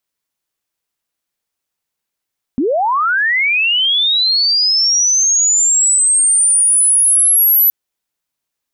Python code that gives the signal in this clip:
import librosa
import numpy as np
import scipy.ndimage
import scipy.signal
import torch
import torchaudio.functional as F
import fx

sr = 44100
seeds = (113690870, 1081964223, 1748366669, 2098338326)

y = fx.chirp(sr, length_s=5.12, from_hz=230.0, to_hz=12000.0, law='linear', from_db=-12.0, to_db=-7.5)